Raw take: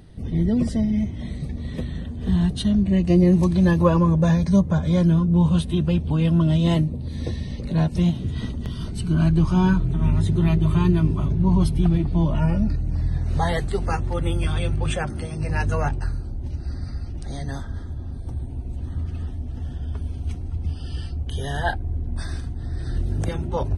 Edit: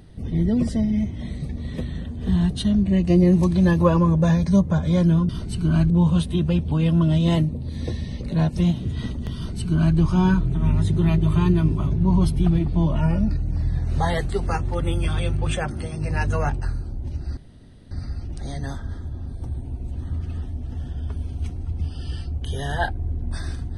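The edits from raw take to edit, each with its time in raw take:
8.75–9.36 copy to 5.29
16.76 insert room tone 0.54 s

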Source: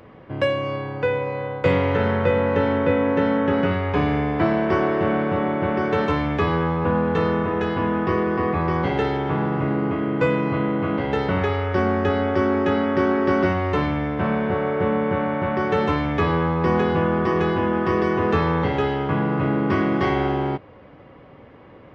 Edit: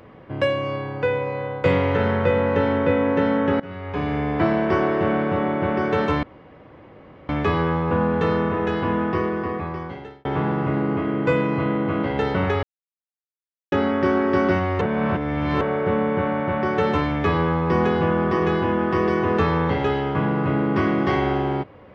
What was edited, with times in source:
3.6–4.36 fade in, from -20.5 dB
6.23 insert room tone 1.06 s
7.93–9.19 fade out
11.57–12.66 mute
13.75–14.55 reverse

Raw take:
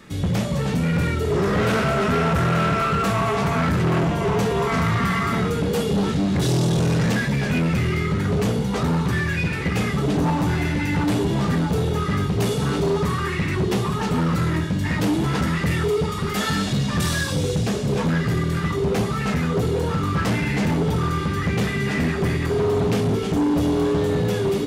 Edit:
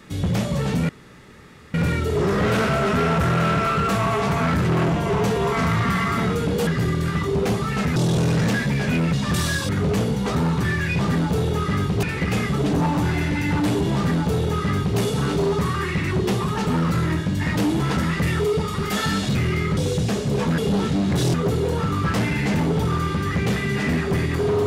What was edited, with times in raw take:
0.89 insert room tone 0.85 s
5.82–6.58 swap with 18.16–19.45
7.75–8.17 swap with 16.79–17.35
11.39–12.43 copy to 9.47

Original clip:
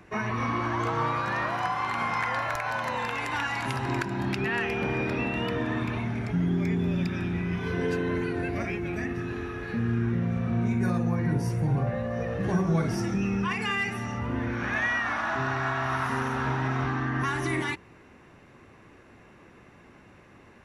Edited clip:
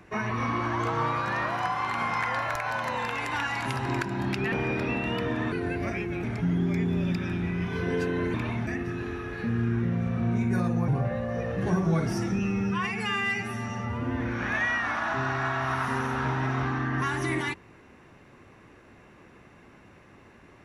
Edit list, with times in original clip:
4.52–4.82 cut
5.82–6.15 swap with 8.25–8.97
11.18–11.7 cut
13.21–14.42 stretch 1.5×

